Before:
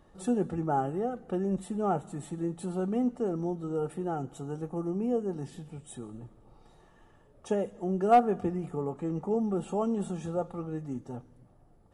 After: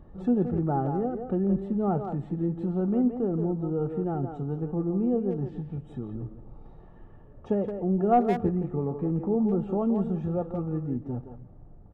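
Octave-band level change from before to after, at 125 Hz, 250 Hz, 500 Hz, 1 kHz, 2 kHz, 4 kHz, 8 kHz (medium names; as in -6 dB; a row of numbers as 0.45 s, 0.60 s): +7.0 dB, +5.0 dB, +2.0 dB, -1.0 dB, -2.5 dB, no reading, under -20 dB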